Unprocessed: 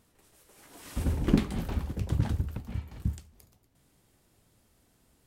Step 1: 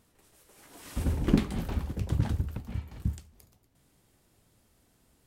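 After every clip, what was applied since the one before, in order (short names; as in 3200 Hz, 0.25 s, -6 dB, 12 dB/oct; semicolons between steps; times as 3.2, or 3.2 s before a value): nothing audible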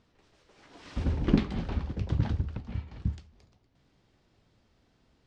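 LPF 5300 Hz 24 dB/oct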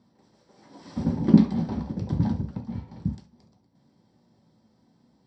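reverb, pre-delay 3 ms, DRR 3 dB; gain -6.5 dB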